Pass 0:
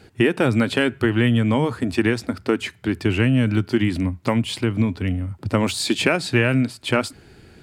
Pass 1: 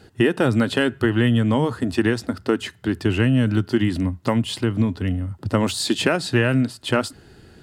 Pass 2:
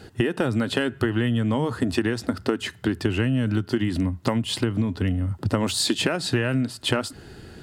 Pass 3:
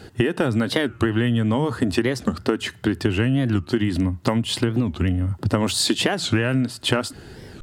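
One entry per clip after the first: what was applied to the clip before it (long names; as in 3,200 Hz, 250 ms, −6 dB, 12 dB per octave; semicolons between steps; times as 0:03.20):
notch filter 2,300 Hz, Q 5.5
downward compressor, threshold −24 dBFS, peak gain reduction 11 dB; level +4.5 dB
wow of a warped record 45 rpm, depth 250 cents; level +2.5 dB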